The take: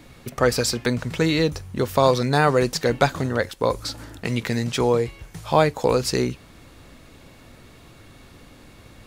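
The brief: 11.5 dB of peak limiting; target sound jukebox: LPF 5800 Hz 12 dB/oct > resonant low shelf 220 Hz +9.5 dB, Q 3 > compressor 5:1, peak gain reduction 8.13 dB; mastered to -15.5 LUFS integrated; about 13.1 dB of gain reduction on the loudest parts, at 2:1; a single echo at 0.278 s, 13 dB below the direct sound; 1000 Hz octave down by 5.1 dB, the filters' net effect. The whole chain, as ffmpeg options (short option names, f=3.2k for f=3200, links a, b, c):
-af "equalizer=f=1k:t=o:g=-6,acompressor=threshold=-39dB:ratio=2,alimiter=level_in=4.5dB:limit=-24dB:level=0:latency=1,volume=-4.5dB,lowpass=5.8k,lowshelf=f=220:t=q:w=3:g=9.5,aecho=1:1:278:0.224,acompressor=threshold=-30dB:ratio=5,volume=20.5dB"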